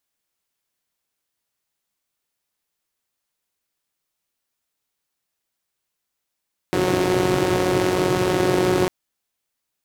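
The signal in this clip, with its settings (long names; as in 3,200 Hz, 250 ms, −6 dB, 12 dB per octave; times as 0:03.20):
pulse-train model of a four-cylinder engine, steady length 2.15 s, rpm 5,500, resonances 130/320 Hz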